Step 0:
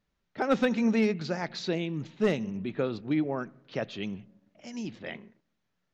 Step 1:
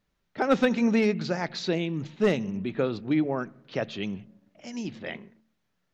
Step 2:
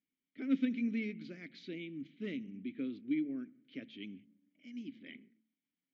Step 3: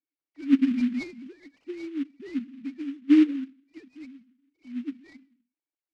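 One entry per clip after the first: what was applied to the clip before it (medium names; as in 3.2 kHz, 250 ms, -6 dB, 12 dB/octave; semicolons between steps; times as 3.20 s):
de-hum 73.66 Hz, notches 3; trim +3 dB
vowel filter i; trim -2.5 dB
formants replaced by sine waves; dynamic bell 340 Hz, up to +6 dB, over -44 dBFS, Q 1.1; delay time shaken by noise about 2.1 kHz, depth 0.034 ms; trim +7 dB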